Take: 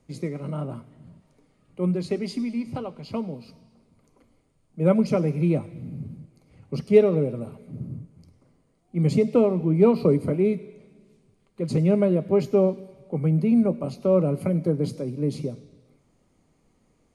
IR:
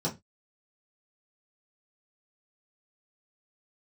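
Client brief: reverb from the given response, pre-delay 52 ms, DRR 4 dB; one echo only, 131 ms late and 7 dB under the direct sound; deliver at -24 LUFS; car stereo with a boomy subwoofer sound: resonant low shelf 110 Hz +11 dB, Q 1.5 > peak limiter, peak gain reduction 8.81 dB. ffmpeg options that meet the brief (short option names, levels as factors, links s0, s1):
-filter_complex "[0:a]aecho=1:1:131:0.447,asplit=2[s0][s1];[1:a]atrim=start_sample=2205,adelay=52[s2];[s1][s2]afir=irnorm=-1:irlink=0,volume=0.299[s3];[s0][s3]amix=inputs=2:normalize=0,lowshelf=f=110:t=q:w=1.5:g=11,volume=0.708,alimiter=limit=0.211:level=0:latency=1"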